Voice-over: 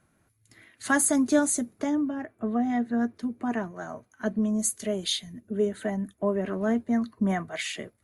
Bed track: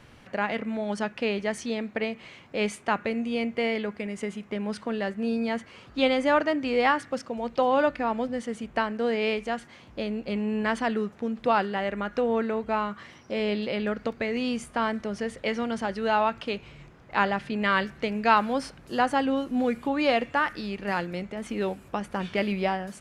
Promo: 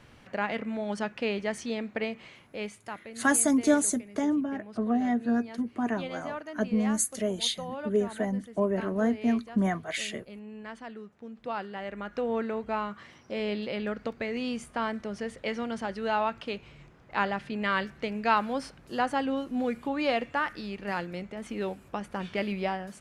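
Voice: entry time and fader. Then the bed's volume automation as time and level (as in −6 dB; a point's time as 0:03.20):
2.35 s, −0.5 dB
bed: 0:02.22 −2.5 dB
0:03.03 −15.5 dB
0:11.05 −15.5 dB
0:12.34 −4 dB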